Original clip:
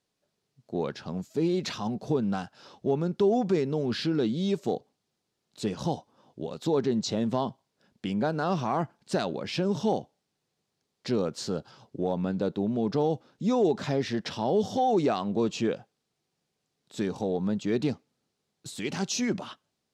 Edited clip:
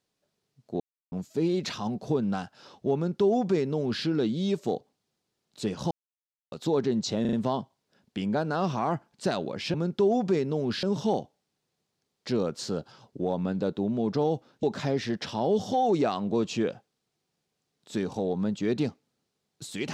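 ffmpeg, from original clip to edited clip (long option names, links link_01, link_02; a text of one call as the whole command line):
ffmpeg -i in.wav -filter_complex "[0:a]asplit=11[link_01][link_02][link_03][link_04][link_05][link_06][link_07][link_08][link_09][link_10][link_11];[link_01]atrim=end=0.8,asetpts=PTS-STARTPTS,afade=type=out:start_time=0.796:duration=0.004:curve=hsin[link_12];[link_02]atrim=start=0.8:end=1.12,asetpts=PTS-STARTPTS,volume=0[link_13];[link_03]atrim=start=1.12:end=5.91,asetpts=PTS-STARTPTS,afade=type=in:duration=0.004:curve=hsin,afade=type=out:start_time=4.786:duration=0.004:curve=hsin[link_14];[link_04]atrim=start=5.91:end=6.52,asetpts=PTS-STARTPTS,volume=0[link_15];[link_05]atrim=start=6.52:end=7.252,asetpts=PTS-STARTPTS,afade=type=in:duration=0.004:curve=hsin[link_16];[link_06]atrim=start=7.208:end=7.252[link_17];[link_07]atrim=start=7.208:end=7.252[link_18];[link_08]atrim=start=7.208:end=9.622[link_19];[link_09]atrim=start=2.948:end=4.042[link_20];[link_10]atrim=start=9.618:end=13.422[link_21];[link_11]atrim=start=13.668[link_22];[link_12][link_13][link_14][link_15][link_16]concat=n=5:v=0:a=1[link_23];[link_23][link_17]acrossfade=duration=0.004:curve1=hsin:curve2=hsin[link_24];[link_24][link_18]acrossfade=duration=0.004:curve1=hsin:curve2=hsin[link_25];[link_25][link_19]acrossfade=duration=0.004:curve1=hsin:curve2=hsin[link_26];[link_26][link_20]acrossfade=duration=0.004:curve1=hsin:curve2=hsin[link_27];[link_27][link_21]acrossfade=duration=0.004:curve1=hsin:curve2=hsin[link_28];[link_28][link_22]acrossfade=duration=0.004:curve1=hsin:curve2=hsin" out.wav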